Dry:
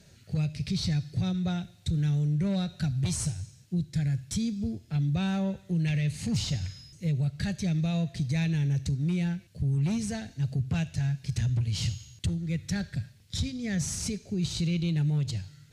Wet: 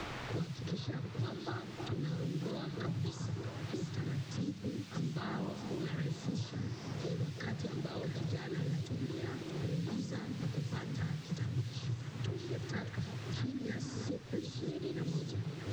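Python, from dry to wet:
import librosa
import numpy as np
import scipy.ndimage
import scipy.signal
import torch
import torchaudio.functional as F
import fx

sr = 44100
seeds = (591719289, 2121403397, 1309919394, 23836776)

y = fx.fixed_phaser(x, sr, hz=650.0, stages=6)
y = fx.noise_vocoder(y, sr, seeds[0], bands=16)
y = fx.dmg_noise_colour(y, sr, seeds[1], colour='white', level_db=-52.0)
y = fx.air_absorb(y, sr, metres=170.0)
y = fx.echo_alternate(y, sr, ms=314, hz=1100.0, feedback_pct=77, wet_db=-9)
y = fx.band_squash(y, sr, depth_pct=100)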